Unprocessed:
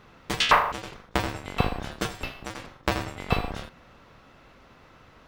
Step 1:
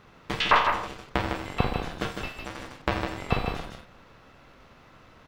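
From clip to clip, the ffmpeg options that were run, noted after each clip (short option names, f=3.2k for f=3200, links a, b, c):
-filter_complex "[0:a]aeval=exprs='if(lt(val(0),0),0.708*val(0),val(0))':c=same,aecho=1:1:49.56|154.5:0.282|0.501,acrossover=split=4200[a][b];[b]acompressor=threshold=-49dB:ratio=4:attack=1:release=60[c];[a][c]amix=inputs=2:normalize=0"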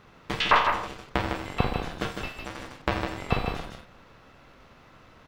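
-af anull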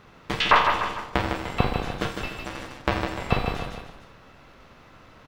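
-af "aecho=1:1:298:0.237,volume=2.5dB"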